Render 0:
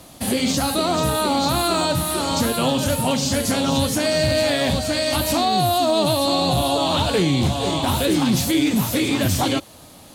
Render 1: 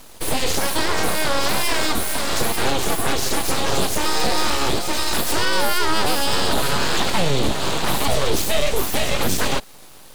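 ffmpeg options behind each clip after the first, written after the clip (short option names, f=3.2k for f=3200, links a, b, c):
-af "aeval=exprs='abs(val(0))':c=same,volume=2.5dB"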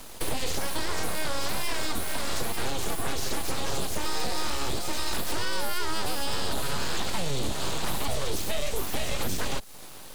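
-filter_complex "[0:a]acrossover=split=120|5000[a][b][c];[a]acompressor=threshold=-25dB:ratio=4[d];[b]acompressor=threshold=-33dB:ratio=4[e];[c]acompressor=threshold=-38dB:ratio=4[f];[d][e][f]amix=inputs=3:normalize=0"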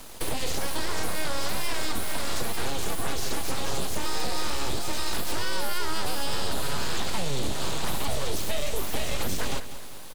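-af "aecho=1:1:196|392|588|784:0.237|0.104|0.0459|0.0202"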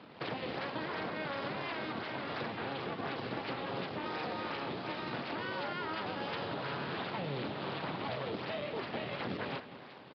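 -filter_complex "[0:a]acrossover=split=3400[a][b];[b]acrusher=samples=31:mix=1:aa=0.000001:lfo=1:lforange=49.6:lforate=2.8[c];[a][c]amix=inputs=2:normalize=0,aresample=11025,aresample=44100,highpass=f=120:w=0.5412,highpass=f=120:w=1.3066,volume=-5.5dB"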